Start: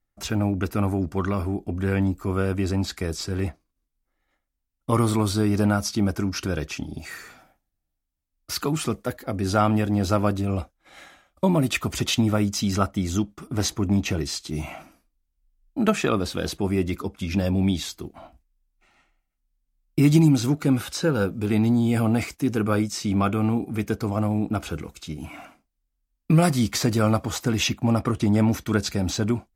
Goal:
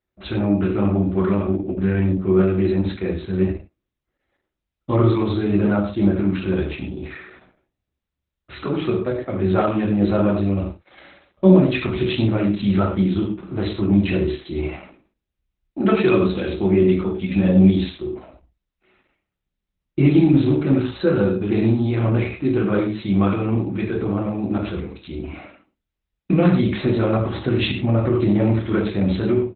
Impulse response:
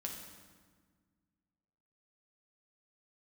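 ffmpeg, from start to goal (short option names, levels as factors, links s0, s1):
-filter_complex "[0:a]equalizer=f=125:t=o:w=1:g=-7,equalizer=f=1000:t=o:w=1:g=-5,equalizer=f=4000:t=o:w=1:g=-4,aecho=1:1:16|70:0.355|0.178[s0];[1:a]atrim=start_sample=2205,afade=t=out:st=0.3:d=0.01,atrim=end_sample=13671,asetrate=83790,aresample=44100[s1];[s0][s1]afir=irnorm=-1:irlink=0,acontrast=27,highpass=84,lowshelf=f=110:g=8,volume=2" -ar 48000 -c:a libopus -b:a 8k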